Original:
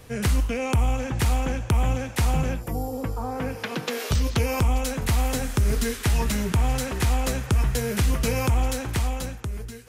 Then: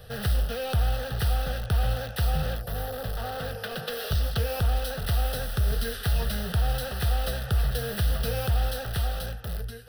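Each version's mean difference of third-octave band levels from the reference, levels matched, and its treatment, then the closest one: 5.5 dB: in parallel at -3 dB: wrapped overs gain 27 dB; on the sum: fixed phaser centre 1500 Hz, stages 8; gain -2 dB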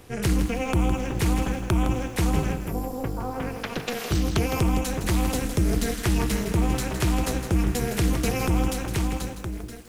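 3.5 dB: AM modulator 250 Hz, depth 85%; lo-fi delay 0.161 s, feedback 35%, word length 8-bit, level -9 dB; gain +2.5 dB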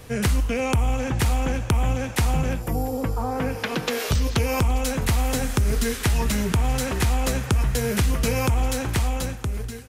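1.5 dB: compressor 2:1, threshold -24 dBFS, peak gain reduction 4.5 dB; on a send: feedback echo 0.342 s, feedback 57%, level -22.5 dB; on the sum: gain +4 dB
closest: third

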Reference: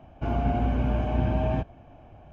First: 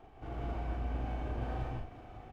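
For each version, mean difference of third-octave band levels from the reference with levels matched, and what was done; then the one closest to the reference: 8.0 dB: minimum comb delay 2.6 ms; reverse; compressor 5:1, threshold -38 dBFS, peak gain reduction 16 dB; reverse; doubler 39 ms -3.5 dB; non-linear reverb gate 0.2 s rising, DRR -2 dB; gain -4 dB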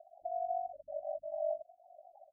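19.5 dB: loudest bins only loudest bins 8; elliptic high-pass 500 Hz, stop band 50 dB; ring modulator 24 Hz; in parallel at -0.5 dB: compressor, threshold -53 dBFS, peak gain reduction 18.5 dB; on the sum: gain +1 dB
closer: first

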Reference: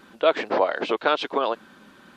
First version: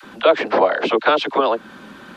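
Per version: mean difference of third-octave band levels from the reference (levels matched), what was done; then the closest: 3.0 dB: high shelf 5400 Hz -5.5 dB; dispersion lows, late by 43 ms, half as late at 490 Hz; in parallel at +3 dB: compressor, threshold -31 dBFS, peak gain reduction 16 dB; on the sum: gain +3.5 dB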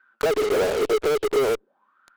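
10.5 dB: auto-wah 420–1600 Hz, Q 10, down, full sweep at -26 dBFS; in parallel at -8.5 dB: fuzz box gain 59 dB, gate -50 dBFS; on the sum: low shelf 220 Hz +3.5 dB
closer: first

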